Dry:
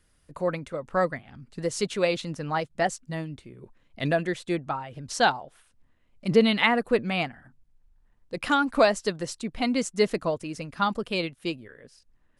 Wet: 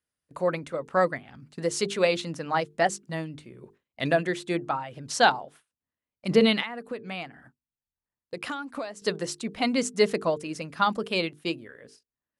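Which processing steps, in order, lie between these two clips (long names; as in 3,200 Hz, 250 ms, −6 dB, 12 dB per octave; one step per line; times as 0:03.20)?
high-pass filter 62 Hz
mains-hum notches 50/100/150/200/250/300/350/400/450 Hz
noise gate with hold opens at −40 dBFS
low-shelf EQ 120 Hz −8 dB
0:06.60–0:09.02: downward compressor 16 to 1, threshold −33 dBFS, peak gain reduction 19 dB
level +2 dB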